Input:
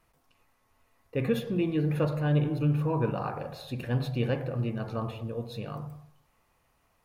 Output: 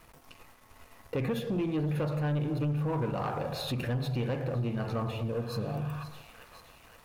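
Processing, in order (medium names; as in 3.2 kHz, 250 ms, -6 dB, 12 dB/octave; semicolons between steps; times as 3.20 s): spectral replace 5.37–6.01 s, 880–3900 Hz before; feedback echo behind a high-pass 524 ms, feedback 63%, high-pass 1.4 kHz, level -18.5 dB; compression 2.5:1, threshold -50 dBFS, peak gain reduction 19 dB; waveshaping leveller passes 2; trim +8 dB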